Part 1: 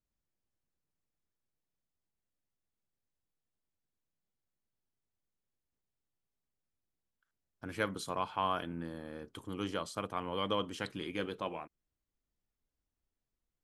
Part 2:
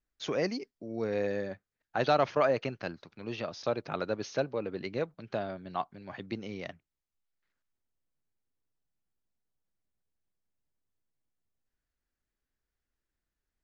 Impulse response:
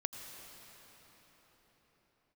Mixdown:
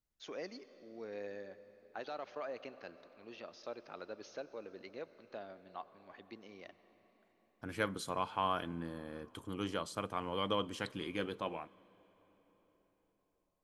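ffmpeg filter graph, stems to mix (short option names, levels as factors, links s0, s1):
-filter_complex "[0:a]volume=0.794,asplit=2[s0][s1];[s1]volume=0.126[s2];[1:a]lowshelf=f=75:g=-6.5,alimiter=limit=0.1:level=0:latency=1:release=135,equalizer=f=130:t=o:w=0.86:g=-14.5,volume=0.178,asplit=2[s3][s4];[s4]volume=0.473[s5];[2:a]atrim=start_sample=2205[s6];[s2][s5]amix=inputs=2:normalize=0[s7];[s7][s6]afir=irnorm=-1:irlink=0[s8];[s0][s3][s8]amix=inputs=3:normalize=0"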